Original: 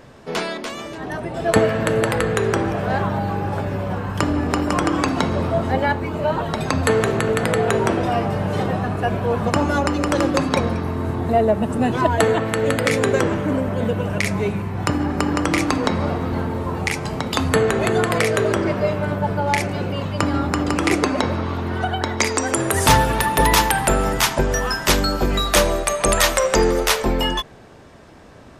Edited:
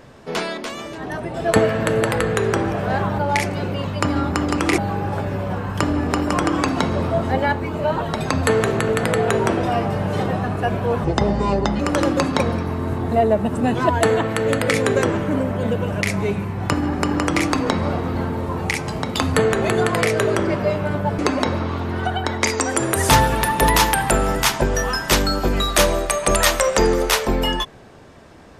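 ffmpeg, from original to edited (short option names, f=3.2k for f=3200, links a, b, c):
-filter_complex "[0:a]asplit=6[a][b][c][d][e][f];[a]atrim=end=3.182[g];[b]atrim=start=19.358:end=20.962[h];[c]atrim=start=3.178:end=9.444[i];[d]atrim=start=9.44:end=9.97,asetpts=PTS-STARTPTS,asetrate=30870,aresample=44100[j];[e]atrim=start=9.966:end=19.362[k];[f]atrim=start=20.958[l];[g][h]acrossfade=d=0.004:c1=hsin:c2=hsin[m];[m][i]acrossfade=d=0.004:c1=hsin:c2=hsin[n];[n][j]acrossfade=d=0.004:c1=hsin:c2=hsin[o];[o][k]acrossfade=d=0.004:c1=hsin:c2=hsin[p];[p][l]acrossfade=d=0.004:c1=hsin:c2=hsin"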